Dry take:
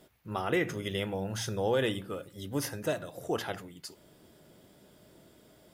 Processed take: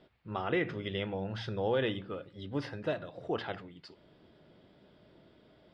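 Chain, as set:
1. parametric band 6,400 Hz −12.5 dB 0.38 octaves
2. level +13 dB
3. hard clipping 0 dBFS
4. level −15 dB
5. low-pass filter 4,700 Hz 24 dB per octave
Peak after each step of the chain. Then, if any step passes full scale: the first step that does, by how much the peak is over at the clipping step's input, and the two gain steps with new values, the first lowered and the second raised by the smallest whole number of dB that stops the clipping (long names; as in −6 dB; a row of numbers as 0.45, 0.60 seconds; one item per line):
−17.5, −4.5, −4.5, −19.5, −19.5 dBFS
no step passes full scale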